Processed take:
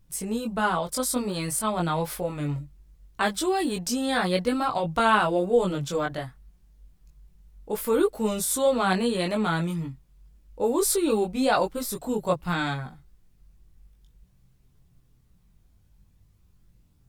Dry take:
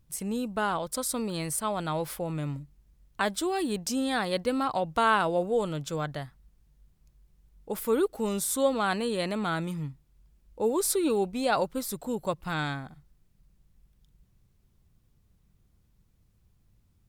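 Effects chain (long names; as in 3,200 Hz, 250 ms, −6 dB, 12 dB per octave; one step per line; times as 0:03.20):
multi-voice chorus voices 4, 0.21 Hz, delay 20 ms, depth 3.8 ms
level +6.5 dB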